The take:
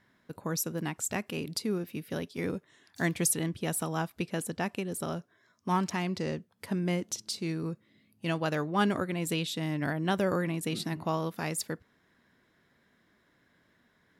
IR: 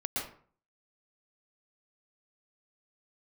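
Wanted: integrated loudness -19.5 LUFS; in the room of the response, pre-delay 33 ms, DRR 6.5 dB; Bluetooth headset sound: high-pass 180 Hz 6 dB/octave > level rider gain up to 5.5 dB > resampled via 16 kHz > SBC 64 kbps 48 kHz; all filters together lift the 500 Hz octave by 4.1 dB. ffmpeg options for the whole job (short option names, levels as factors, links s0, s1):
-filter_complex "[0:a]equalizer=f=500:t=o:g=6,asplit=2[s0][s1];[1:a]atrim=start_sample=2205,adelay=33[s2];[s1][s2]afir=irnorm=-1:irlink=0,volume=0.266[s3];[s0][s3]amix=inputs=2:normalize=0,highpass=f=180:p=1,dynaudnorm=m=1.88,aresample=16000,aresample=44100,volume=3.98" -ar 48000 -c:a sbc -b:a 64k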